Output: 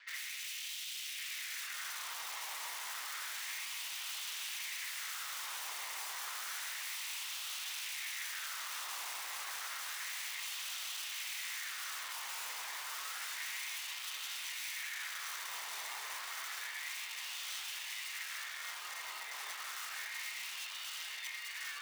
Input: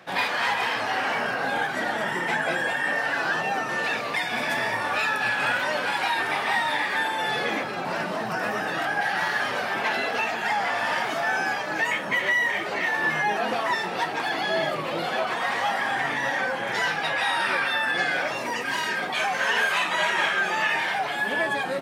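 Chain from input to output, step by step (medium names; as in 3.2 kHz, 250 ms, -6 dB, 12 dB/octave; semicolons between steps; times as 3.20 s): Doppler pass-by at 5.90 s, 9 m/s, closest 10 m; ring modulator 810 Hz; high-pass 59 Hz 24 dB/octave; bass shelf 320 Hz +10 dB; reverse; compression 16:1, threshold -39 dBFS, peak gain reduction 20 dB; reverse; steep low-pass 6.4 kHz 72 dB/octave; ring modulator 2 kHz; integer overflow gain 43.5 dB; LFO high-pass sine 0.3 Hz 900–2900 Hz; echo whose repeats swap between lows and highs 557 ms, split 940 Hz, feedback 81%, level -6 dB; trim +5 dB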